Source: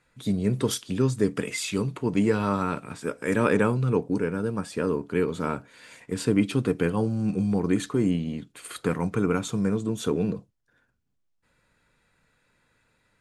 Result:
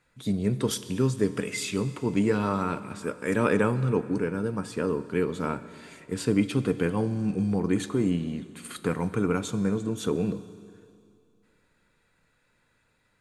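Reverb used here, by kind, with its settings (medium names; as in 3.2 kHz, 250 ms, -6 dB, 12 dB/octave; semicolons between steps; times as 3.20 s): Schroeder reverb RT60 2.5 s, combs from 30 ms, DRR 14 dB; trim -1.5 dB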